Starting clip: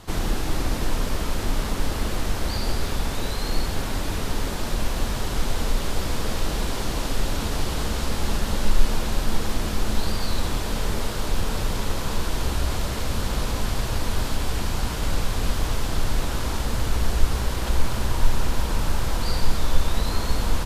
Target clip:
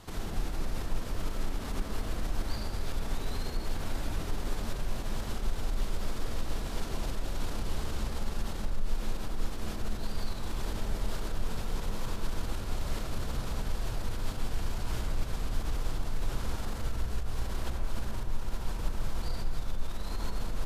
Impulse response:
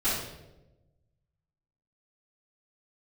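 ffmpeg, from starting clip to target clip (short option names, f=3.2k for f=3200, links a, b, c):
-filter_complex "[0:a]acompressor=threshold=-19dB:ratio=6,alimiter=limit=-22.5dB:level=0:latency=1:release=59,asplit=2[a][b];[1:a]atrim=start_sample=2205,lowpass=2.1k,adelay=79[c];[b][c]afir=irnorm=-1:irlink=0,volume=-13.5dB[d];[a][d]amix=inputs=2:normalize=0,volume=-6.5dB"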